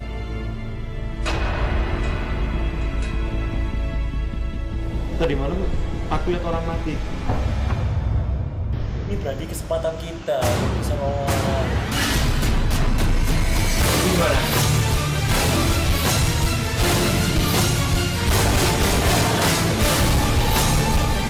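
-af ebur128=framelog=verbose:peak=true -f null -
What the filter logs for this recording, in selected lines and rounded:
Integrated loudness:
  I:         -21.6 LUFS
  Threshold: -31.6 LUFS
Loudness range:
  LRA:         7.1 LU
  Threshold: -41.7 LUFS
  LRA low:   -25.8 LUFS
  LRA high:  -18.6 LUFS
True peak:
  Peak:      -11.4 dBFS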